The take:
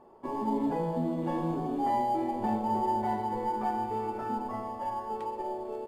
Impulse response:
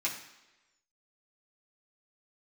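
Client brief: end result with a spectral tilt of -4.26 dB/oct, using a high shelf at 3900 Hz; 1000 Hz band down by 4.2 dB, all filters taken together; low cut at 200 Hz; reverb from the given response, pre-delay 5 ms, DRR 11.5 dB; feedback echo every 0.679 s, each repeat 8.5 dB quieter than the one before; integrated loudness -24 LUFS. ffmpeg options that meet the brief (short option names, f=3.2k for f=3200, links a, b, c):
-filter_complex "[0:a]highpass=200,equalizer=f=1k:t=o:g=-5,highshelf=f=3.9k:g=-4,aecho=1:1:679|1358|2037|2716:0.376|0.143|0.0543|0.0206,asplit=2[a][b];[1:a]atrim=start_sample=2205,adelay=5[c];[b][c]afir=irnorm=-1:irlink=0,volume=-17dB[d];[a][d]amix=inputs=2:normalize=0,volume=9.5dB"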